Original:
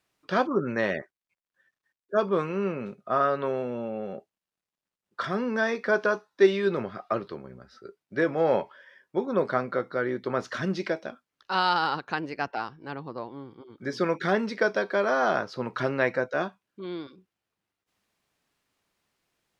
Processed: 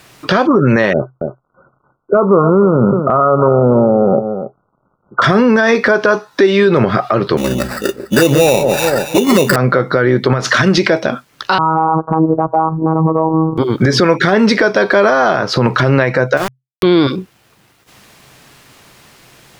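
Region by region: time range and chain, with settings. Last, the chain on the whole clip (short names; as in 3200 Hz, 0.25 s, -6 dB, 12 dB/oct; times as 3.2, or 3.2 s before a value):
0.93–5.22 brick-wall FIR low-pass 1500 Hz + echo 0.281 s -18 dB
7.37–9.56 envelope flanger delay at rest 4.5 ms, full sweep at -20 dBFS + sample-rate reducer 3200 Hz + echo with dull and thin repeats by turns 0.143 s, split 850 Hz, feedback 50%, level -11 dB
10.33–10.78 low shelf 470 Hz -6.5 dB + compressor 8:1, threshold -38 dBFS
11.58–13.58 steep low-pass 1200 Hz 72 dB/oct + robotiser 160 Hz
16.37–16.83 sample gate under -30.5 dBFS + compressor 3:1, threshold -36 dBFS
whole clip: bell 130 Hz +10 dB 0.22 oct; compressor 8:1, threshold -36 dBFS; maximiser +34 dB; gain -1 dB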